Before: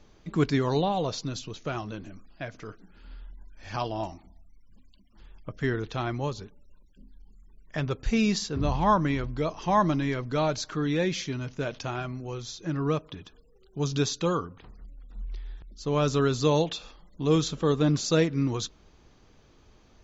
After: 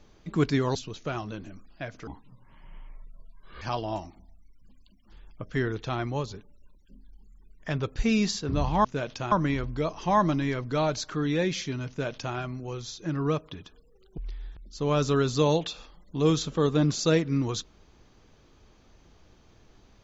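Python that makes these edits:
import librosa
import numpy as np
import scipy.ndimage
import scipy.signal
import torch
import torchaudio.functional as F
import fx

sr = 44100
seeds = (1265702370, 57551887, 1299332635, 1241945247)

y = fx.edit(x, sr, fx.cut(start_s=0.75, length_s=0.6),
    fx.speed_span(start_s=2.67, length_s=1.02, speed=0.66),
    fx.duplicate(start_s=11.49, length_s=0.47, to_s=8.92),
    fx.cut(start_s=13.78, length_s=1.45), tone=tone)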